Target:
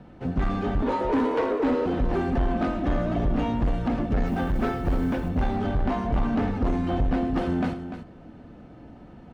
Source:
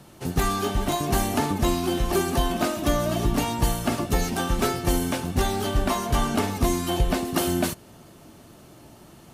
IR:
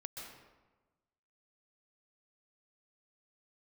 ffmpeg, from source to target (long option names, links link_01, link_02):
-filter_complex "[0:a]lowpass=1800,lowshelf=frequency=200:gain=6,bandreject=frequency=1100:width=6,aecho=1:1:4:0.39,asettb=1/sr,asplit=3[link_01][link_02][link_03];[link_01]atrim=end=0.824[link_04];[link_02]atrim=start=0.82:end=1.86,asetpts=PTS-STARTPTS,afade=type=in:duration=0.004:curve=qsin,afade=type=out:start_time=1.036:duration=0.004:curve=qsin,afreqshift=220[link_05];[link_03]atrim=start=1.856[link_06];[link_04][link_05]acrossfade=duration=0.004:curve1=hsin:curve2=qsin[link_07];[link_07][link_06]acrossfade=duration=0.004:curve1=qsin:curve2=hsin,asettb=1/sr,asplit=3[link_08][link_09][link_10];[link_08]atrim=end=4.264[link_11];[link_09]atrim=start=4.26:end=5.29,asetpts=PTS-STARTPTS,afade=type=in:duration=0.004:curve=qsin,afade=type=out:start_time=1.026:duration=0.004:curve=qsin,acrusher=bits=8:mode=log:mix=0:aa=0.000001[link_12];[link_10]atrim=start=5.286[link_13];[link_11][link_12]acrossfade=duration=0.004:curve1=hsin:curve2=qsin[link_14];[link_14][link_13]acrossfade=duration=0.004:curve1=qsin:curve2=hsin,asoftclip=type=tanh:threshold=-19.5dB,aecho=1:1:104|295:0.15|0.299"